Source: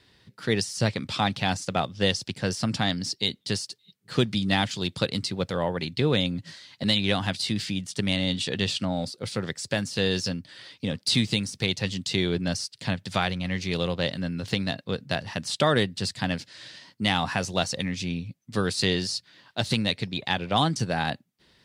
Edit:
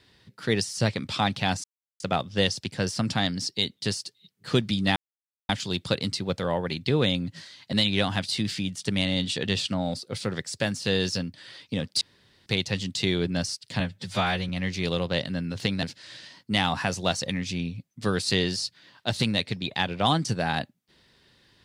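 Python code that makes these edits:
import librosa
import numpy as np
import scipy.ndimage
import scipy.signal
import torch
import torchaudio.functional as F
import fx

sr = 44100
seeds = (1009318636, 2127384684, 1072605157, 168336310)

y = fx.edit(x, sr, fx.insert_silence(at_s=1.64, length_s=0.36),
    fx.insert_silence(at_s=4.6, length_s=0.53),
    fx.room_tone_fill(start_s=11.12, length_s=0.45),
    fx.stretch_span(start_s=12.91, length_s=0.46, factor=1.5),
    fx.cut(start_s=14.71, length_s=1.63), tone=tone)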